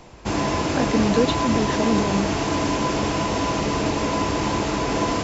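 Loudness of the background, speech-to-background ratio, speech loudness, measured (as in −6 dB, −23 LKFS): −23.0 LKFS, −1.0 dB, −24.0 LKFS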